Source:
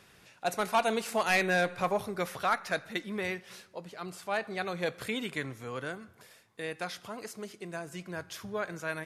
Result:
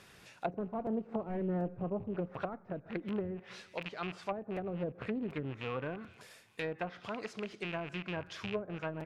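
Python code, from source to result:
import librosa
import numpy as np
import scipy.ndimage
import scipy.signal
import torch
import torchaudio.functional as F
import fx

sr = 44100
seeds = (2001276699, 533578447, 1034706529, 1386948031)

y = fx.rattle_buzz(x, sr, strikes_db=-47.0, level_db=-28.0)
y = fx.echo_wet_highpass(y, sr, ms=213, feedback_pct=61, hz=2700.0, wet_db=-22.0)
y = fx.env_lowpass_down(y, sr, base_hz=340.0, full_db=-29.0)
y = fx.buffer_crackle(y, sr, first_s=0.86, period_s=0.74, block=256, kind='repeat')
y = fx.doppler_dist(y, sr, depth_ms=0.25)
y = y * librosa.db_to_amplitude(1.0)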